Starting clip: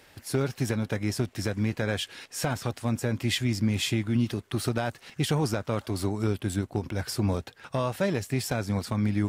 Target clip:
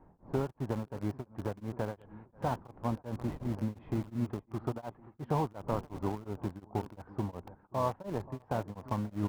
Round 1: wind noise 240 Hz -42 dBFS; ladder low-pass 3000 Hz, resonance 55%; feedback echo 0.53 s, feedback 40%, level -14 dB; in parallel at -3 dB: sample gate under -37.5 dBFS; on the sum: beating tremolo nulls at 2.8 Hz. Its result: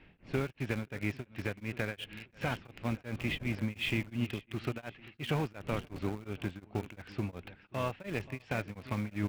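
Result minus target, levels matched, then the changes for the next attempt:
4000 Hz band +12.5 dB
change: ladder low-pass 1100 Hz, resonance 55%

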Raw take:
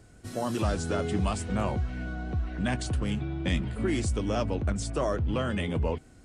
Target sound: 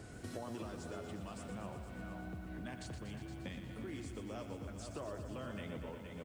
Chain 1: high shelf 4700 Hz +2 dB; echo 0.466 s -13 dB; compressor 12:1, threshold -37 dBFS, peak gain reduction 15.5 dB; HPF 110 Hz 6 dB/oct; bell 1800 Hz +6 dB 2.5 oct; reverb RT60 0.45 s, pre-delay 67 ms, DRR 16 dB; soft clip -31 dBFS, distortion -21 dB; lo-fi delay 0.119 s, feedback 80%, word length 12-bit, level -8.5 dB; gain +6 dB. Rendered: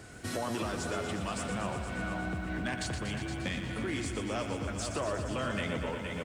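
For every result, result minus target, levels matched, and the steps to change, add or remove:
compressor: peak gain reduction -9.5 dB; 2000 Hz band +4.0 dB; 8000 Hz band +3.5 dB
change: compressor 12:1, threshold -47.5 dBFS, peak gain reduction 25 dB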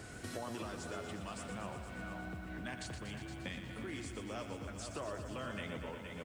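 2000 Hz band +4.5 dB; 8000 Hz band +3.5 dB
remove: bell 1800 Hz +6 dB 2.5 oct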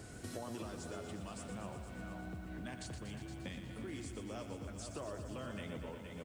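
8000 Hz band +4.0 dB
change: high shelf 4700 Hz -4.5 dB

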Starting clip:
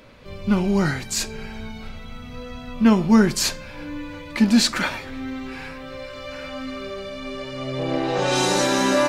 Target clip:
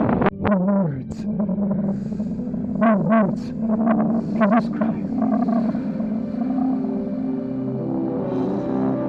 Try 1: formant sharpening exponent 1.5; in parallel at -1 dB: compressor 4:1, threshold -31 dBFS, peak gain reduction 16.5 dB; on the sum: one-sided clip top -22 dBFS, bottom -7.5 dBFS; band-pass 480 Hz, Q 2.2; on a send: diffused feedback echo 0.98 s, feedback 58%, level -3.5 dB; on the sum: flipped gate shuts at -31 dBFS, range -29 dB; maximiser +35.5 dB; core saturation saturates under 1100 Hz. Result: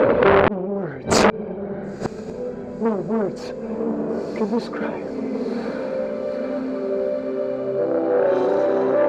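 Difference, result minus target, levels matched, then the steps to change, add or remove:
500 Hz band +7.0 dB; compressor: peak gain reduction +5.5 dB
change: compressor 4:1, threshold -24 dBFS, peak gain reduction 11.5 dB; change: band-pass 210 Hz, Q 2.2

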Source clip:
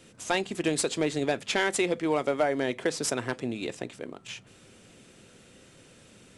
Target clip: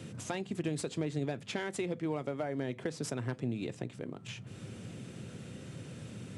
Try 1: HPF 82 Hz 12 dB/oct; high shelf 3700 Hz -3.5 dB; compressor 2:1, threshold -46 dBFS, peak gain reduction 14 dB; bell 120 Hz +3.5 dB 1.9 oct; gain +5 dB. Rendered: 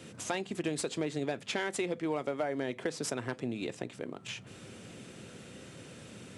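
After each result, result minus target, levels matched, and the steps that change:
125 Hz band -8.0 dB; compressor: peak gain reduction -4.5 dB
change: bell 120 Hz +14.5 dB 1.9 oct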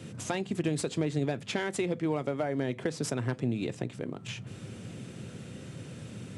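compressor: peak gain reduction -4.5 dB
change: compressor 2:1, threshold -55.5 dBFS, peak gain reduction 18.5 dB

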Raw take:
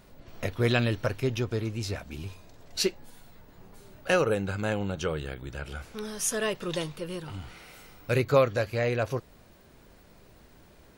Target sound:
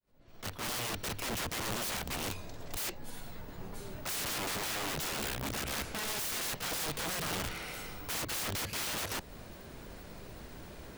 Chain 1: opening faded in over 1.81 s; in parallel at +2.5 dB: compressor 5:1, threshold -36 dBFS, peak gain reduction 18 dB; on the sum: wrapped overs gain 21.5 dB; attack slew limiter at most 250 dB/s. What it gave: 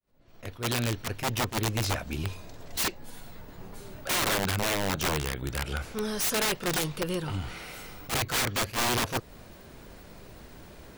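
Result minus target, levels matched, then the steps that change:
wrapped overs: distortion -14 dB
change: wrapped overs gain 31 dB

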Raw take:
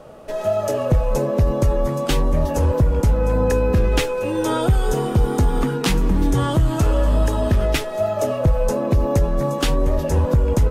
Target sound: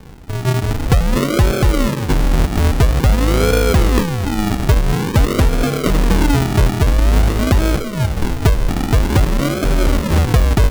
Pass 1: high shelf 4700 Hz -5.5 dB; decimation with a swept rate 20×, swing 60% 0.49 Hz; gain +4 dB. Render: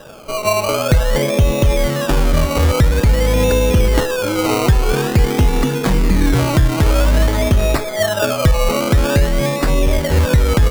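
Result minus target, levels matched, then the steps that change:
decimation with a swept rate: distortion -7 dB
change: decimation with a swept rate 66×, swing 60% 0.49 Hz

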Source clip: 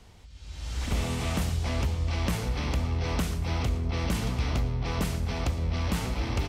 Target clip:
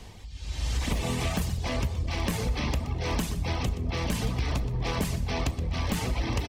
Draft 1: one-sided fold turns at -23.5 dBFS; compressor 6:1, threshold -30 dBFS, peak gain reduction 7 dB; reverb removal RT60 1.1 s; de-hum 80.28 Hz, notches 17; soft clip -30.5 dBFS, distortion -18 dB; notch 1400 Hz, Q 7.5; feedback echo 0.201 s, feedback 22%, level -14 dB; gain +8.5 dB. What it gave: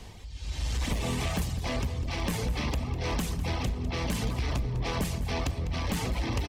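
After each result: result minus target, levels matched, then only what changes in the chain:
echo 78 ms late; soft clip: distortion +14 dB
change: feedback echo 0.123 s, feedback 22%, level -14 dB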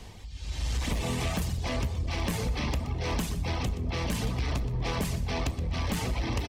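soft clip: distortion +14 dB
change: soft clip -22 dBFS, distortion -32 dB

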